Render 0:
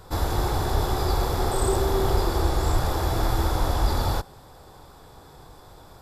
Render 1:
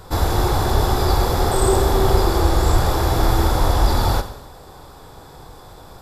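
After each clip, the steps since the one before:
four-comb reverb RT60 0.85 s, combs from 30 ms, DRR 9.5 dB
level +6 dB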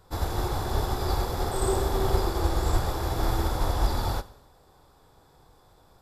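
expander for the loud parts 1.5 to 1, over −30 dBFS
level −7 dB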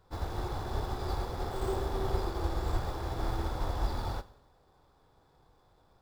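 running median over 5 samples
level −7 dB

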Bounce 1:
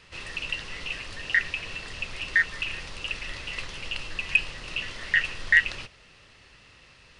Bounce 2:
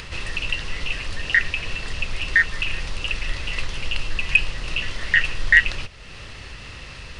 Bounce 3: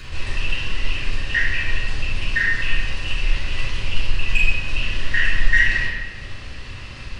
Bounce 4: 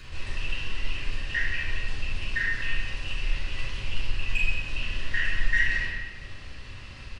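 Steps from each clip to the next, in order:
low-shelf EQ 96 Hz +10.5 dB; in parallel at +2.5 dB: upward compression, threshold −26 dBFS; on the sum: level −2.5 dB
in parallel at −5.5 dB: soft clipping −11 dBFS, distortion −13 dB; on the sum: convolution reverb RT60 1.5 s, pre-delay 3 ms, DRR −10.5 dB; level −17 dB
single-tap delay 177 ms −11.5 dB; level −8 dB

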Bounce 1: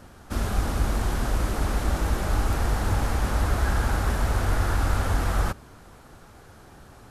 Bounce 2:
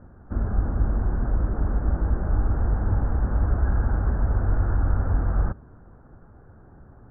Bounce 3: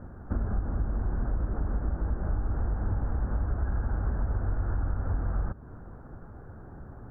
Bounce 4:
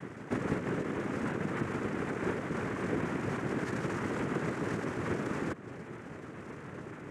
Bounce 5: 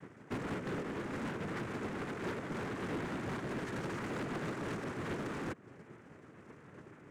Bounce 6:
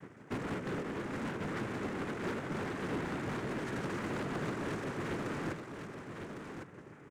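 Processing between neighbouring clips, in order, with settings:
elliptic low-pass filter 1,600 Hz, stop band 60 dB; low-shelf EQ 410 Hz +11.5 dB; level −8 dB
downward compressor 5 to 1, threshold −30 dBFS, peak gain reduction 13.5 dB; level +4 dB
notch comb filter 1,200 Hz; cochlear-implant simulation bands 3; level +5.5 dB
gain into a clipping stage and back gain 35 dB; expander for the loud parts 2.5 to 1, over −44 dBFS; level +1 dB
single-tap delay 1,105 ms −7 dB; level +1 dB

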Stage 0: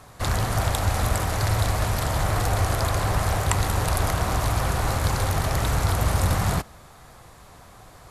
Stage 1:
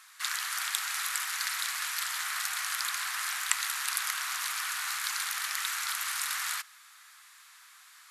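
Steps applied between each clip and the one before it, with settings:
inverse Chebyshev high-pass filter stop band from 540 Hz, stop band 50 dB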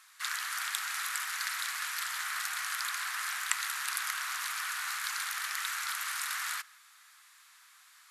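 dynamic equaliser 1,500 Hz, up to +4 dB, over −49 dBFS, Q 1.2
level −4 dB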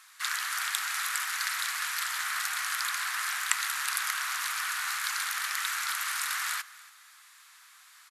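single-tap delay 282 ms −21 dB
level +3.5 dB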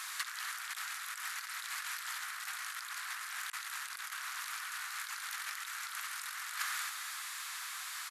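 compressor whose output falls as the input rises −40 dBFS, ratio −0.5
level +2 dB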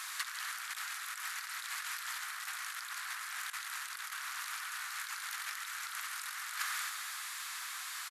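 single-tap delay 151 ms −12 dB

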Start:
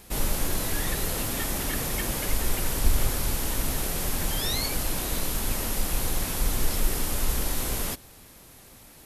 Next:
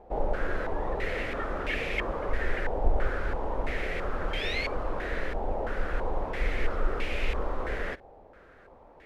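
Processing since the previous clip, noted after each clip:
graphic EQ with 10 bands 125 Hz −9 dB, 250 Hz −4 dB, 500 Hz +8 dB, 1,000 Hz −6 dB
low-pass on a step sequencer 3 Hz 820–2,400 Hz
level −2 dB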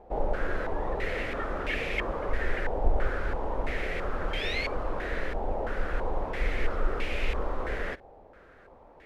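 no processing that can be heard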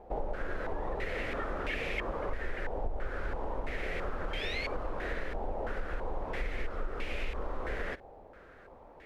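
downward compressor 4 to 1, threshold −31 dBFS, peak gain reduction 13.5 dB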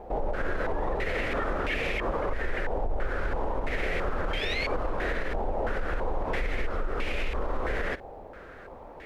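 brickwall limiter −28.5 dBFS, peak gain reduction 7 dB
level +8.5 dB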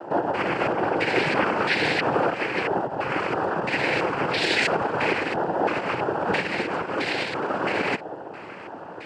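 cochlear-implant simulation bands 8
level +8.5 dB

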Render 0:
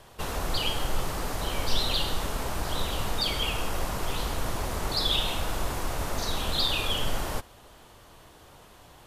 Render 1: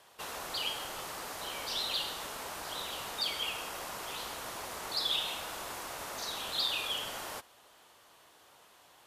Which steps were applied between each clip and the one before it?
high-pass filter 790 Hz 6 dB per octave
level −4.5 dB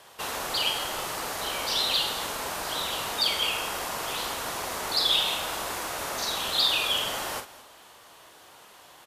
double-tracking delay 44 ms −8 dB
single-tap delay 218 ms −18 dB
level +8 dB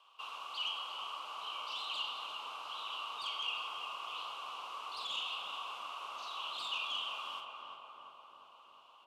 wavefolder on the positive side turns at −25 dBFS
pair of resonant band-passes 1,800 Hz, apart 1.3 octaves
feedback echo with a low-pass in the loop 353 ms, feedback 74%, low-pass 1,600 Hz, level −3 dB
level −4 dB

